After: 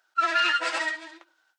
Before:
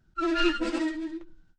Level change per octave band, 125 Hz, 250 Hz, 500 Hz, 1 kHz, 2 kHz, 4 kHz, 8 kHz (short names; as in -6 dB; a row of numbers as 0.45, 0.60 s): n/a, -17.0 dB, -5.0 dB, +7.5 dB, +9.0 dB, +5.5 dB, +7.0 dB